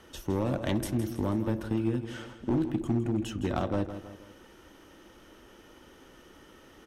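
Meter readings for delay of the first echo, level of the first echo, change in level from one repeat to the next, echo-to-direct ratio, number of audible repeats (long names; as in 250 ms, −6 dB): 162 ms, −11.5 dB, −6.0 dB, −10.5 dB, 3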